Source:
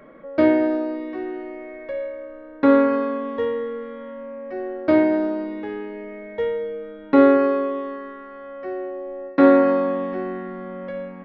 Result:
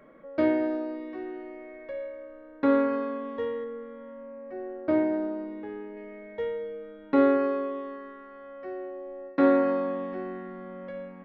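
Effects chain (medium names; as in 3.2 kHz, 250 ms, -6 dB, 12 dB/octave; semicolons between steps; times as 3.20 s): 3.64–5.97 s: treble shelf 2.8 kHz -11.5 dB; trim -7.5 dB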